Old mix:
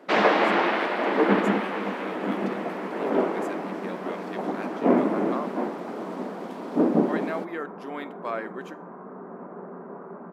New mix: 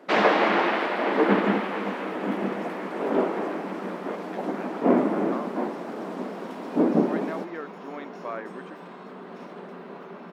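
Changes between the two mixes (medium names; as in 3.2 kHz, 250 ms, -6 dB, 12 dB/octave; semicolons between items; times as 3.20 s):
speech: add distance through air 170 m; second sound: remove inverse Chebyshev low-pass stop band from 4.7 kHz, stop band 60 dB; reverb: off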